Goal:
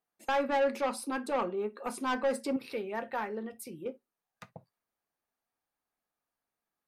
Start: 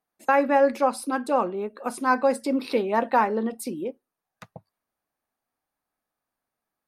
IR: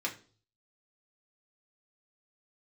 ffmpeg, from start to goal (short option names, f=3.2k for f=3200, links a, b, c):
-filter_complex "[0:a]asettb=1/sr,asplit=3[a][b][c];[a]atrim=end=2.564[d];[b]atrim=start=2.56:end=3.86,asetpts=PTS-STARTPTS,afade=t=in:d=0.004:c=qsin,afade=t=out:st=1.296:d=0.004:c=qsin,equalizer=f=125:t=o:w=1:g=5,equalizer=f=250:t=o:w=1:g=-10,equalizer=f=500:t=o:w=1:g=-4,equalizer=f=1k:t=o:w=1:g=-9,equalizer=f=4k:t=o:w=1:g=-7,equalizer=f=8k:t=o:w=1:g=-4[e];[c]atrim=start=3.856[f];[d][e]acrossfade=d=0.004:c1=hsin:c2=qsin[g];[g][f]acrossfade=d=0.004:c1=qsin:c2=hsin,asoftclip=type=tanh:threshold=-19dB,asplit=2[h][i];[1:a]atrim=start_sample=2205,atrim=end_sample=3969,asetrate=52920,aresample=44100[j];[i][j]afir=irnorm=-1:irlink=0,volume=-9dB[k];[h][k]amix=inputs=2:normalize=0,volume=-6.5dB"